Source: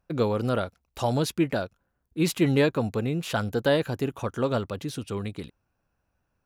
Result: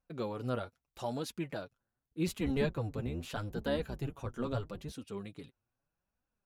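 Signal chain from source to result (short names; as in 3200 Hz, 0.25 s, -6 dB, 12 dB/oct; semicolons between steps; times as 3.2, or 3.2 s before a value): 2.27–4.92 octaver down 1 oct, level +1 dB; flange 0.8 Hz, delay 3.6 ms, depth 5.2 ms, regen +27%; gain -8 dB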